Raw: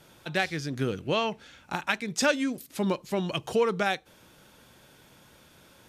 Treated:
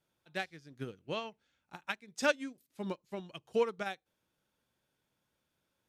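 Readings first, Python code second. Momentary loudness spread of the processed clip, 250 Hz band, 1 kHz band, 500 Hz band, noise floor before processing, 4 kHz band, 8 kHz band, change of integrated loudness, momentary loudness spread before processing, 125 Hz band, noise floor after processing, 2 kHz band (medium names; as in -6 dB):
14 LU, -12.0 dB, -10.0 dB, -7.5 dB, -57 dBFS, -10.5 dB, -12.5 dB, -9.0 dB, 7 LU, -14.5 dB, -83 dBFS, -8.5 dB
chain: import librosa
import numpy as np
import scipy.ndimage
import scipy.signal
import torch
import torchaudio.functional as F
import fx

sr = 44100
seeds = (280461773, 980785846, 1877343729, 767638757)

y = fx.upward_expand(x, sr, threshold_db=-35.0, expansion=2.5)
y = y * 10.0 ** (-3.5 / 20.0)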